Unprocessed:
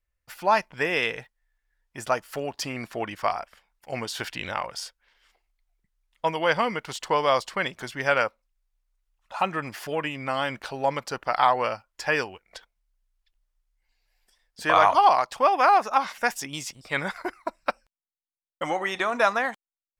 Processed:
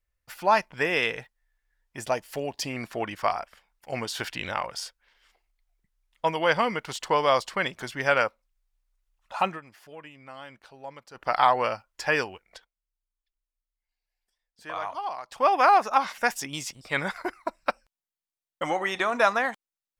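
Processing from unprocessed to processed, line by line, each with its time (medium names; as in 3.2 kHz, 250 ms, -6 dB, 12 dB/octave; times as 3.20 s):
2.01–2.73 s: peaking EQ 1.3 kHz -10 dB 0.53 oct
9.47–11.27 s: dip -16 dB, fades 0.13 s
12.43–15.50 s: dip -15 dB, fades 0.27 s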